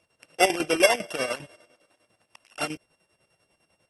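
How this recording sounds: a buzz of ramps at a fixed pitch in blocks of 16 samples; chopped level 10 Hz, depth 65%, duty 55%; AAC

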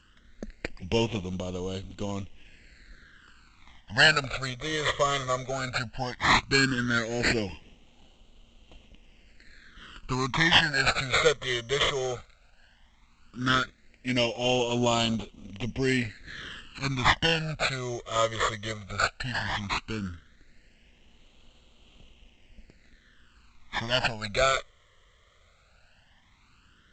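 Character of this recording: aliases and images of a low sample rate 5.9 kHz, jitter 0%; phasing stages 12, 0.15 Hz, lowest notch 260–1700 Hz; G.722

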